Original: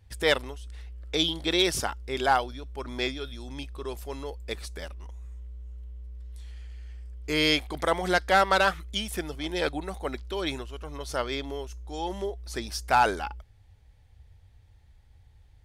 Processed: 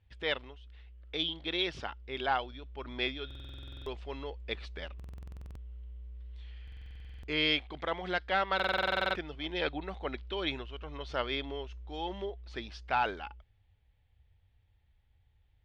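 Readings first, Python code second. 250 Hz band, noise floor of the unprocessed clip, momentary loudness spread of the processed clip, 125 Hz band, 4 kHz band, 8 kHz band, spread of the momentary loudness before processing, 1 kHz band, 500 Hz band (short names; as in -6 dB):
-7.5 dB, -57 dBFS, 18 LU, -6.5 dB, -5.0 dB, under -20 dB, 20 LU, -7.5 dB, -7.5 dB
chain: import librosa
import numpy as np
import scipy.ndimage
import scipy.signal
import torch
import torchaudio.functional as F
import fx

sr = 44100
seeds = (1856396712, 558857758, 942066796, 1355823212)

y = fx.rider(x, sr, range_db=4, speed_s=2.0)
y = fx.ladder_lowpass(y, sr, hz=3800.0, resonance_pct=40)
y = fx.buffer_glitch(y, sr, at_s=(3.26, 4.95, 6.63, 8.55), block=2048, repeats=12)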